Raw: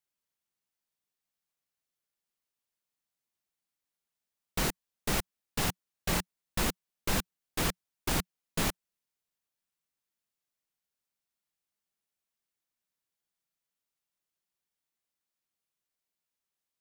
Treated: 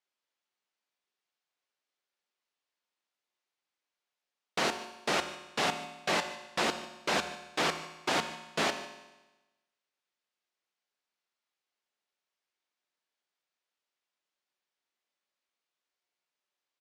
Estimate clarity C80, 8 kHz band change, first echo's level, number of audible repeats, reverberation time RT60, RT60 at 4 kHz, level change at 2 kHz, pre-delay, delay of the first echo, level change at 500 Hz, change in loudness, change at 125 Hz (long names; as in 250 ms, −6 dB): 11.5 dB, −4.0 dB, −18.5 dB, 1, 1.1 s, 1.1 s, +4.5 dB, 5 ms, 149 ms, +4.5 dB, +1.0 dB, −10.0 dB